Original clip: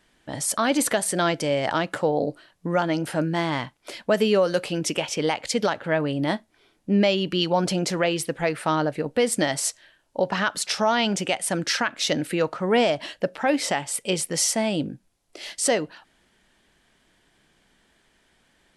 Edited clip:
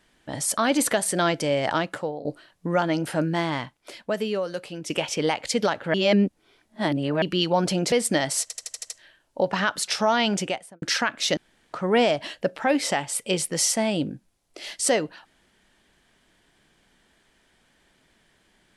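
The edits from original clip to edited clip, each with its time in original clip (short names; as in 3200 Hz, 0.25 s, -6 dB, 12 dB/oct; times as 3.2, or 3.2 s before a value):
1.76–2.25 fade out linear, to -17.5 dB
3.33–4.9 fade out quadratic, to -9 dB
5.94–7.22 reverse
7.92–9.19 cut
9.69 stutter 0.08 s, 7 plays
11.17–11.61 studio fade out
12.16–12.52 room tone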